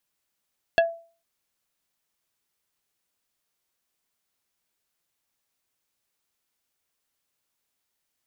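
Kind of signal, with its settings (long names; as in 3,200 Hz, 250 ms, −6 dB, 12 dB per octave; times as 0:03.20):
struck wood plate, lowest mode 669 Hz, decay 0.39 s, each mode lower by 4 dB, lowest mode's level −13 dB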